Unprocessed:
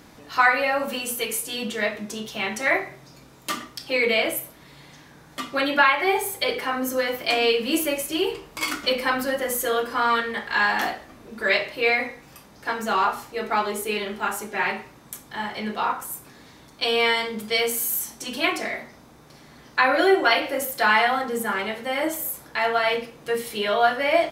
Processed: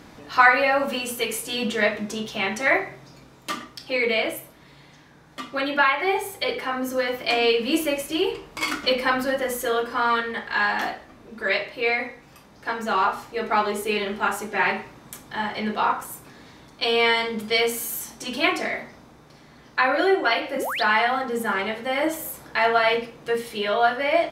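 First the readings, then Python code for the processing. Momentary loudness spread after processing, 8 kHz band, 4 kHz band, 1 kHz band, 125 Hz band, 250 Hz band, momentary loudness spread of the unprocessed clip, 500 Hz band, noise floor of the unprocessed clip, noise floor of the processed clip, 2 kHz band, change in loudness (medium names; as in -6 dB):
11 LU, -4.0 dB, -0.5 dB, +0.5 dB, +1.5 dB, +1.0 dB, 13 LU, +0.5 dB, -50 dBFS, -51 dBFS, 0.0 dB, 0.0 dB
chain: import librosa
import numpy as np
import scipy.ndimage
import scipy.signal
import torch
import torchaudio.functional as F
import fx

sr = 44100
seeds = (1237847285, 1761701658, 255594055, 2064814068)

y = fx.high_shelf(x, sr, hz=7800.0, db=-9.5)
y = fx.rider(y, sr, range_db=10, speed_s=2.0)
y = fx.spec_paint(y, sr, seeds[0], shape='rise', start_s=20.56, length_s=0.27, low_hz=210.0, high_hz=5200.0, level_db=-28.0)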